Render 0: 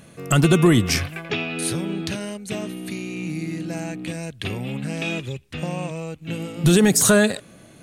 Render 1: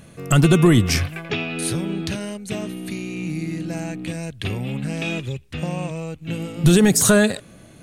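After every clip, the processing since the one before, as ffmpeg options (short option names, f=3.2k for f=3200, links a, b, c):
-af "lowshelf=f=89:g=9.5"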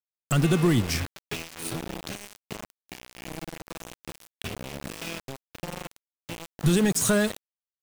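-af "aeval=exprs='val(0)*gte(abs(val(0)),0.0841)':c=same,volume=-7.5dB"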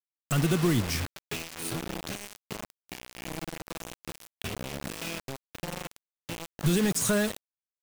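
-af "acrusher=bits=4:mix=0:aa=0.000001,volume=-3.5dB"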